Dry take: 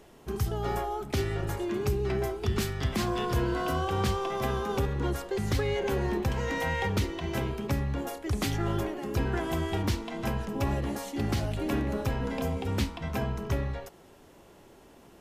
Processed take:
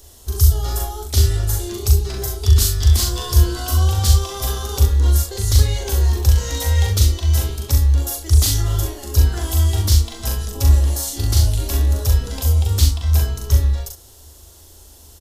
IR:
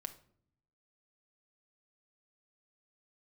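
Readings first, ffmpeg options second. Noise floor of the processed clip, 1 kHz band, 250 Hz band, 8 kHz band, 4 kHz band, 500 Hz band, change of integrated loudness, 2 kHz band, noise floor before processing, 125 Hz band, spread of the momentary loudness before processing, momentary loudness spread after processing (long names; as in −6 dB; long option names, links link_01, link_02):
−44 dBFS, +0.5 dB, −1.5 dB, +20.0 dB, +13.5 dB, 0.0 dB, +13.0 dB, +1.0 dB, −55 dBFS, +15.5 dB, 4 LU, 7 LU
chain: -af "lowshelf=frequency=110:width_type=q:width=3:gain=12.5,aecho=1:1:40|66:0.708|0.376,aexciter=amount=5.9:drive=7:freq=3500,volume=-1dB"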